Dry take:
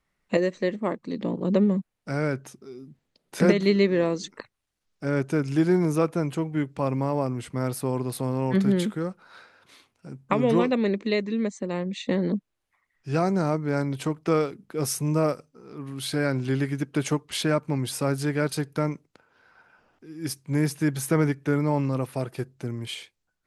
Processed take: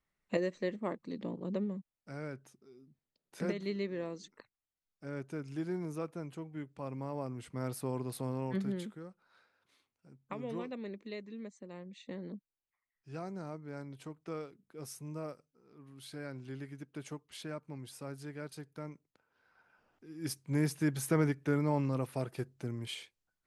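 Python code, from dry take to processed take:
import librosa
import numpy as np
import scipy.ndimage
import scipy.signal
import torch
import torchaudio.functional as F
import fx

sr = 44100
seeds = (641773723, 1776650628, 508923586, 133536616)

y = fx.gain(x, sr, db=fx.line((1.09, -9.5), (1.75, -16.0), (6.76, -16.0), (7.72, -9.5), (8.32, -9.5), (9.04, -18.5), (18.78, -18.5), (20.12, -7.0)))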